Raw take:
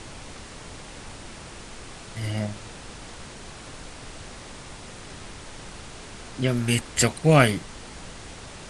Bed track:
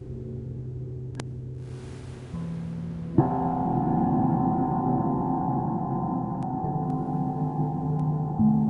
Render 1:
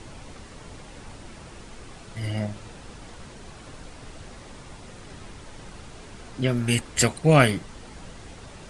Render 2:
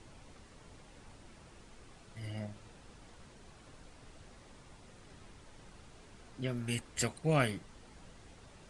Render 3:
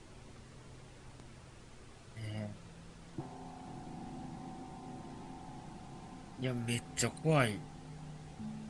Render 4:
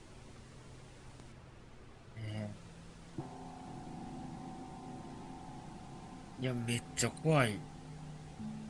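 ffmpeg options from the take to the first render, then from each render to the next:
-af "afftdn=nr=6:nf=-42"
-af "volume=0.224"
-filter_complex "[1:a]volume=0.0668[s0];[0:a][s0]amix=inputs=2:normalize=0"
-filter_complex "[0:a]asettb=1/sr,asplit=3[s0][s1][s2];[s0]atrim=end=1.324[s3];[s1]atrim=start=1.32:end=2.28,asetpts=PTS-STARTPTS,afade=t=in:d=0.004:c=qsin,afade=t=out:st=0.956:d=0.004:c=qsin,highshelf=f=4700:g=-10[s4];[s2]atrim=start=2.276[s5];[s3][s4]acrossfade=d=0.004:c1=hsin:c2=qsin[s6];[s6][s5]acrossfade=d=0.004:c1=qsin:c2=hsin"

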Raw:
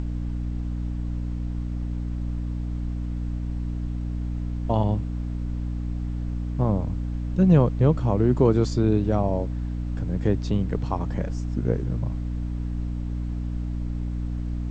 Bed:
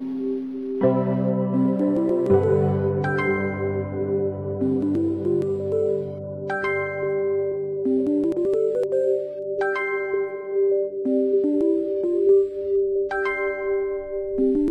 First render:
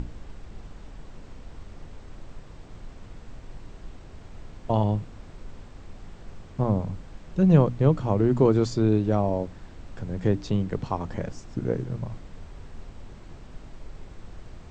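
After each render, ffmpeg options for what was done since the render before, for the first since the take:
-af "bandreject=f=60:t=h:w=6,bandreject=f=120:t=h:w=6,bandreject=f=180:t=h:w=6,bandreject=f=240:t=h:w=6,bandreject=f=300:t=h:w=6"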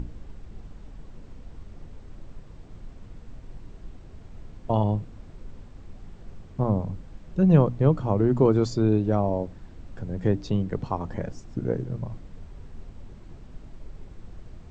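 -af "afftdn=nr=6:nf=-45"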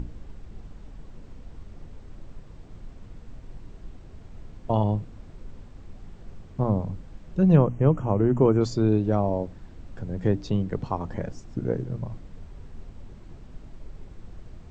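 -filter_complex "[0:a]asettb=1/sr,asplit=3[s0][s1][s2];[s0]atrim=end=7.564[s3];[s1]atrim=start=7.56:end=8.61,asetpts=PTS-STARTPTS,afade=t=in:d=0.004:c=qsin,afade=t=out:st=1.046:d=0.004:c=qsin,asuperstop=centerf=4200:order=12:qfactor=1.7[s4];[s2]atrim=start=8.606[s5];[s3][s4]acrossfade=d=0.004:c1=hsin:c2=qsin[s6];[s6][s5]acrossfade=d=0.004:c1=qsin:c2=hsin"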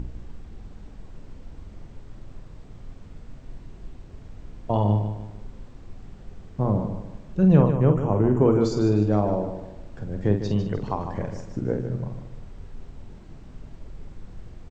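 -filter_complex "[0:a]asplit=2[s0][s1];[s1]adelay=48,volume=0.447[s2];[s0][s2]amix=inputs=2:normalize=0,aecho=1:1:151|302|453|604:0.355|0.135|0.0512|0.0195"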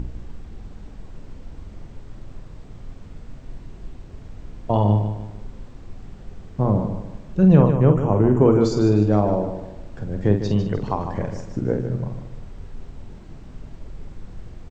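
-af "volume=1.5,alimiter=limit=0.794:level=0:latency=1"

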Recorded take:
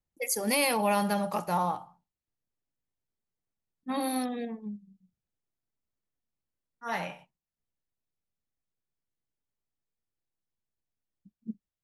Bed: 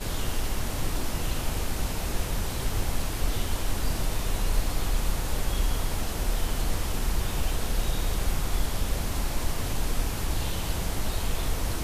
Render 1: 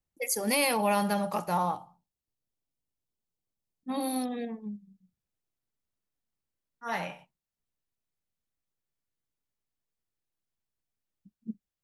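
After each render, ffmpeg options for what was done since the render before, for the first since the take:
-filter_complex "[0:a]asettb=1/sr,asplit=3[s0][s1][s2];[s0]atrim=end=1.744[s3];[s1]atrim=start=1.74:end=4.31,asetpts=PTS-STARTPTS,afade=t=in:d=0.004:c=qsin,afade=t=out:st=2.566:d=0.004:c=qsin,equalizer=f=1700:w=1.1:g=-8[s4];[s2]atrim=start=4.306[s5];[s3][s4]acrossfade=d=0.004:c1=hsin:c2=qsin[s6];[s6][s5]acrossfade=d=0.004:c1=qsin:c2=hsin"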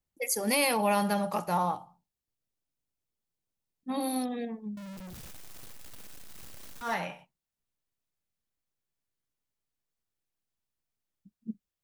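-filter_complex "[0:a]asettb=1/sr,asplit=3[s0][s1][s2];[s0]atrim=end=4.774[s3];[s1]atrim=start=4.77:end=6.94,asetpts=PTS-STARTPTS,afade=t=in:d=0.004:c=qsin,afade=t=out:st=2.166:d=0.004:c=qsin,aeval=exprs='val(0)+0.5*0.0133*sgn(val(0))':c=same[s4];[s2]atrim=start=6.936[s5];[s3][s4]acrossfade=d=0.004:c1=hsin:c2=qsin[s6];[s6][s5]acrossfade=d=0.004:c1=qsin:c2=hsin"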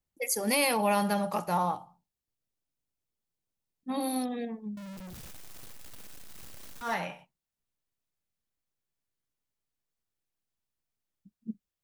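-af anull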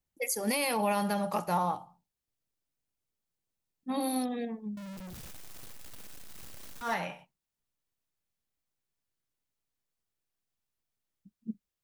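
-af "alimiter=limit=0.1:level=0:latency=1:release=191"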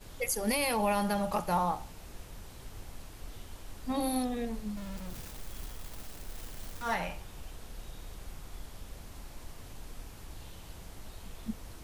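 -filter_complex "[1:a]volume=0.126[s0];[0:a][s0]amix=inputs=2:normalize=0"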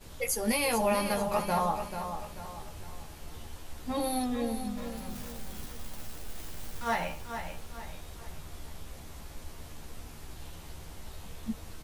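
-filter_complex "[0:a]asplit=2[s0][s1];[s1]adelay=13,volume=0.596[s2];[s0][s2]amix=inputs=2:normalize=0,aecho=1:1:439|878|1317|1756|2195:0.376|0.154|0.0632|0.0259|0.0106"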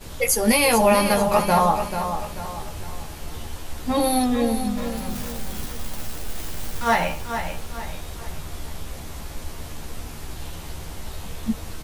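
-af "volume=3.35"

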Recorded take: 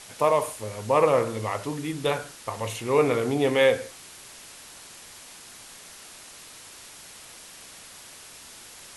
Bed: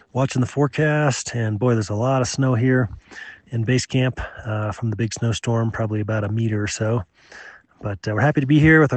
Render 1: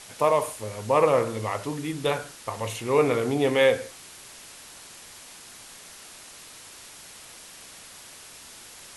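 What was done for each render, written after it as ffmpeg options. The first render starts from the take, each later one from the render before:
-af anull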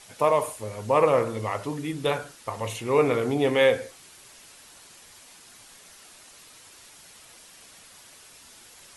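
-af "afftdn=nr=6:nf=-46"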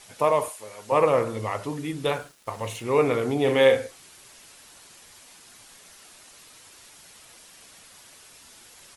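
-filter_complex "[0:a]asettb=1/sr,asplit=3[s0][s1][s2];[s0]atrim=end=0.484[s3];[s1]atrim=start=0.48:end=0.92,asetpts=PTS-STARTPTS,afade=t=in:d=0.004:c=qsin,afade=t=out:st=0.436:d=0.004:c=qsin,highpass=f=870:p=1[s4];[s2]atrim=start=0.916[s5];[s3][s4]acrossfade=d=0.004:c1=hsin:c2=qsin[s6];[s6][s5]acrossfade=d=0.004:c1=qsin:c2=hsin,asettb=1/sr,asplit=3[s7][s8][s9];[s7]atrim=end=2.074[s10];[s8]atrim=start=2.07:end=2.84,asetpts=PTS-STARTPTS,afade=t=in:d=0.004:c=qsin,afade=t=out:st=0.766:d=0.004:c=qsin,aeval=exprs='sgn(val(0))*max(abs(val(0))-0.00316,0)':c=same[s11];[s9]atrim=start=2.836[s12];[s10][s11]acrossfade=d=0.004:c1=hsin:c2=qsin[s13];[s13][s12]acrossfade=d=0.004:c1=qsin:c2=hsin,asplit=3[s14][s15][s16];[s14]afade=t=out:st=3.45:d=0.02[s17];[s15]asplit=2[s18][s19];[s19]adelay=45,volume=0.473[s20];[s18][s20]amix=inputs=2:normalize=0,afade=t=in:st=3.45:d=0.02,afade=t=out:st=3.86:d=0.02[s21];[s16]afade=t=in:st=3.86:d=0.02[s22];[s17][s21][s22]amix=inputs=3:normalize=0"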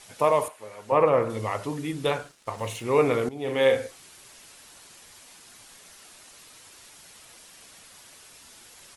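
-filter_complex "[0:a]asettb=1/sr,asplit=3[s0][s1][s2];[s0]atrim=end=0.484[s3];[s1]atrim=start=0.48:end=1.3,asetpts=PTS-STARTPTS,afade=t=in:d=0.004:c=qsin,afade=t=out:st=0.816:d=0.004:c=qsin,acrossover=split=2800[s4][s5];[s5]acompressor=threshold=0.00178:ratio=4:attack=1:release=60[s6];[s4][s6]amix=inputs=2:normalize=0[s7];[s2]atrim=start=1.296[s8];[s3][s7]acrossfade=d=0.004:c1=hsin:c2=qsin[s9];[s9][s8]acrossfade=d=0.004:c1=qsin:c2=hsin,asettb=1/sr,asplit=3[s10][s11][s12];[s10]atrim=end=2.094[s13];[s11]atrim=start=2.09:end=2.58,asetpts=PTS-STARTPTS,afade=t=in:d=0.004:c=qsin,afade=t=out:st=0.486:d=0.004:c=qsin,lowpass=10000[s14];[s12]atrim=start=2.576[s15];[s13][s14]acrossfade=d=0.004:c1=hsin:c2=qsin[s16];[s16][s15]acrossfade=d=0.004:c1=qsin:c2=hsin,asplit=2[s17][s18];[s17]atrim=end=3.29,asetpts=PTS-STARTPTS,afade=t=out:st=3.286:d=0.004:c=hsin:silence=0.141254[s19];[s18]atrim=start=3.29,asetpts=PTS-STARTPTS,afade=t=in:d=0.57:silence=0.141254[s20];[s19][s20]concat=n=2:v=0:a=1"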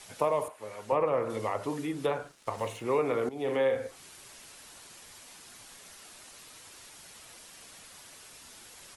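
-filter_complex "[0:a]acrossover=split=250|820|1700[s0][s1][s2][s3];[s0]acompressor=threshold=0.00562:ratio=4[s4];[s1]acompressor=threshold=0.0447:ratio=4[s5];[s2]acompressor=threshold=0.0158:ratio=4[s6];[s3]acompressor=threshold=0.00447:ratio=4[s7];[s4][s5][s6][s7]amix=inputs=4:normalize=0"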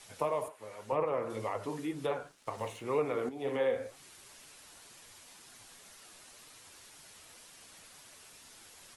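-af "flanger=delay=6.2:depth=6.9:regen=57:speed=2:shape=triangular"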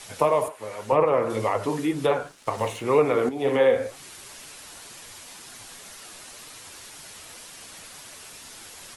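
-af "volume=3.76"

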